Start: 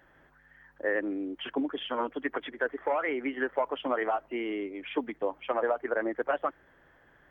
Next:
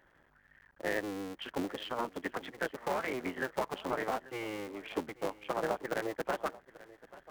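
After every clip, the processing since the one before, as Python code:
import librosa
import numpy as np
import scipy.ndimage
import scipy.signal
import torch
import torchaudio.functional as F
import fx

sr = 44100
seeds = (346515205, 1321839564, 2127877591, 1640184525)

y = fx.cycle_switch(x, sr, every=3, mode='muted')
y = y + 10.0 ** (-19.0 / 20.0) * np.pad(y, (int(837 * sr / 1000.0), 0))[:len(y)]
y = y * librosa.db_to_amplitude(-3.5)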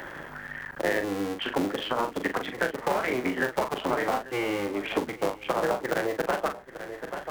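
y = fx.doubler(x, sr, ms=40.0, db=-7.5)
y = fx.band_squash(y, sr, depth_pct=70)
y = y * librosa.db_to_amplitude(7.0)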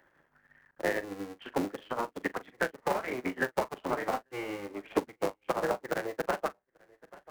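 y = fx.peak_eq(x, sr, hz=3300.0, db=-3.0, octaves=0.3)
y = fx.upward_expand(y, sr, threshold_db=-45.0, expansion=2.5)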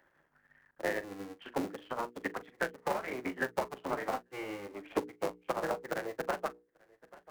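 y = fx.hum_notches(x, sr, base_hz=60, count=8)
y = y * librosa.db_to_amplitude(-3.0)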